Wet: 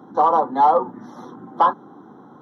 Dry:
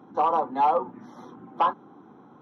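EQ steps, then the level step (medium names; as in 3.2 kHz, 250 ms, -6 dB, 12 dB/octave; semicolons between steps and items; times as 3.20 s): high-pass 87 Hz; Butterworth band-stop 2.5 kHz, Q 2; +6.5 dB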